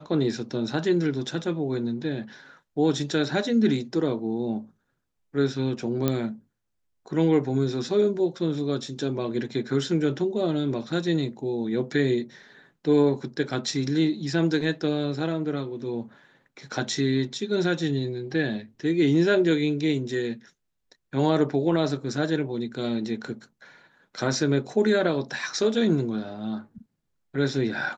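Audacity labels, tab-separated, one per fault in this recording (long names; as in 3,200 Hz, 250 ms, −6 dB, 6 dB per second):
6.080000	6.080000	click −10 dBFS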